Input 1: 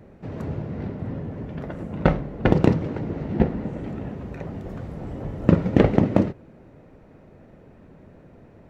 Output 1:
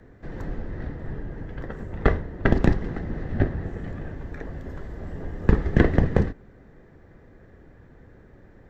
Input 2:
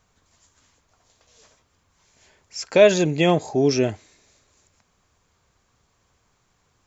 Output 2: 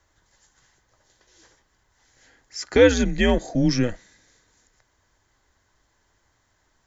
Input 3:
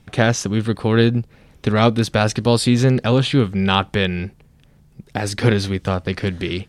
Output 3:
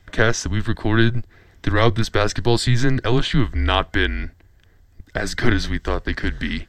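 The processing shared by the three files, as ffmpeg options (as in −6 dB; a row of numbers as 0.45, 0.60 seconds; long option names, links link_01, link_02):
-af "afreqshift=-120,superequalizer=11b=2:12b=0.708:16b=0.316,volume=-1dB"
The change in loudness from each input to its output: −2.5, −1.5, −2.5 LU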